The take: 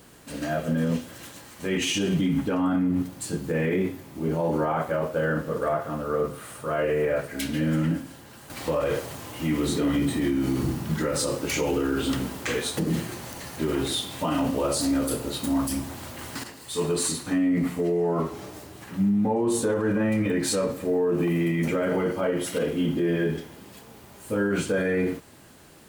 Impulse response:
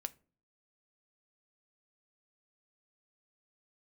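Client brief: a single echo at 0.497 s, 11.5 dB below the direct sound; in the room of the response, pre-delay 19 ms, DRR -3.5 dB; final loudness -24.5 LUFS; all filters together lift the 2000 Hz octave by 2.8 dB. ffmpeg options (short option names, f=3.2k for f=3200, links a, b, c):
-filter_complex "[0:a]equalizer=f=2k:t=o:g=3.5,aecho=1:1:497:0.266,asplit=2[a][b];[1:a]atrim=start_sample=2205,adelay=19[c];[b][c]afir=irnorm=-1:irlink=0,volume=5.5dB[d];[a][d]amix=inputs=2:normalize=0,volume=-4dB"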